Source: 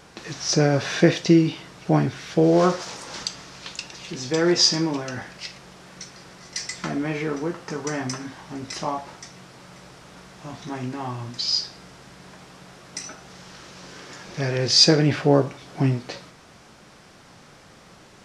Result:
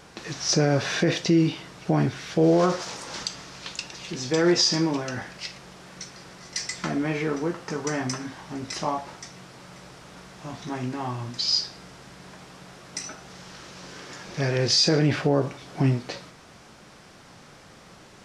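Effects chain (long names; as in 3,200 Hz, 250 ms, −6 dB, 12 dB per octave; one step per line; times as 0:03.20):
brickwall limiter −11 dBFS, peak gain reduction 9 dB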